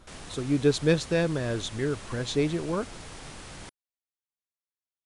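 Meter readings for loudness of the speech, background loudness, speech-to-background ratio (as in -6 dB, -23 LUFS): -27.5 LUFS, -43.0 LUFS, 15.5 dB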